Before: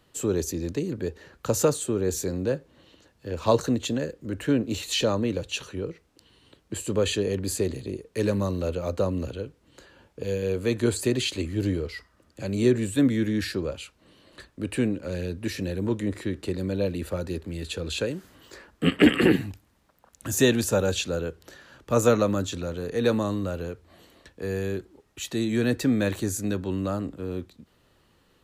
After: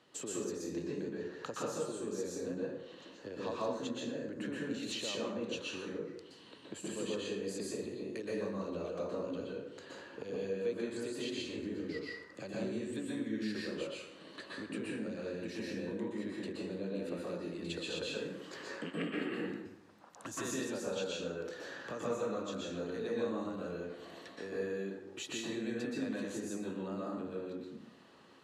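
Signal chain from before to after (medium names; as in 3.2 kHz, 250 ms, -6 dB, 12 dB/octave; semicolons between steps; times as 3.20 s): low-pass 6.8 kHz 12 dB/octave; compression 6:1, threshold -39 dBFS, peak gain reduction 25 dB; high-pass 210 Hz 12 dB/octave; plate-style reverb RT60 0.92 s, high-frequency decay 0.55×, pre-delay 110 ms, DRR -5 dB; trim -2 dB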